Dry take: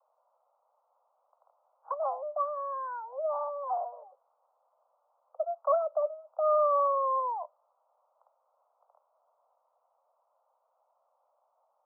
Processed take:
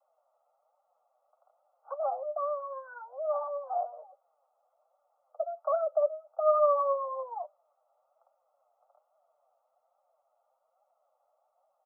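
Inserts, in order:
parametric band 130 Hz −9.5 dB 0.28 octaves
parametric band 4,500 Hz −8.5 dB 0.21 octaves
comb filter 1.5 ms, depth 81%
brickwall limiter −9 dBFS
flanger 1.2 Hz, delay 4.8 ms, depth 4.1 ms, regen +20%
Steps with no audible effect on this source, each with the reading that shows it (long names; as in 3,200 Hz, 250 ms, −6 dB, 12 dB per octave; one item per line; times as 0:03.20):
parametric band 130 Hz: nothing at its input below 480 Hz
parametric band 4,500 Hz: nothing at its input above 1,400 Hz
brickwall limiter −9 dBFS: peak of its input −13.5 dBFS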